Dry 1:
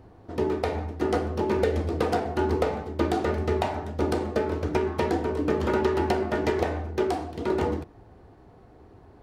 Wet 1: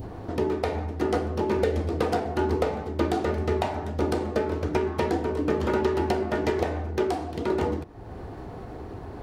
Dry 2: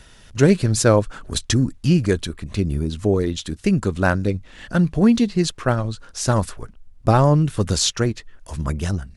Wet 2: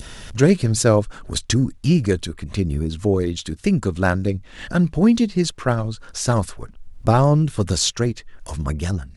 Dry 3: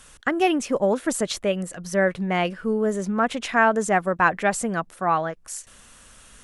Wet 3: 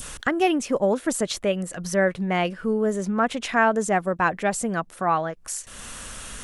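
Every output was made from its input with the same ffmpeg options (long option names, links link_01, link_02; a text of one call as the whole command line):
ffmpeg -i in.wav -af "adynamicequalizer=threshold=0.0251:dfrequency=1500:dqfactor=0.71:tfrequency=1500:tqfactor=0.71:attack=5:release=100:ratio=0.375:range=2.5:mode=cutabove:tftype=bell,acompressor=mode=upward:threshold=-25dB:ratio=2.5" out.wav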